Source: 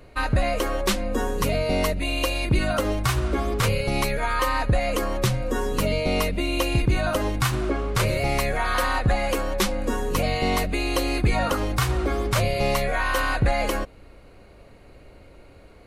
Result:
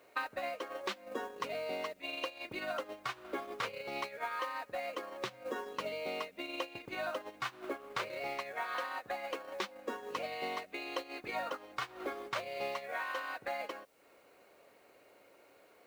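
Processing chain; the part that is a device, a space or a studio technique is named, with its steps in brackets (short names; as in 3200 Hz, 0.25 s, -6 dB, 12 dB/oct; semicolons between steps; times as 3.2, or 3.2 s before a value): baby monitor (BPF 440–3900 Hz; compressor 8:1, threshold -41 dBFS, peak gain reduction 19.5 dB; white noise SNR 23 dB; gate -42 dBFS, range -15 dB); gain +7 dB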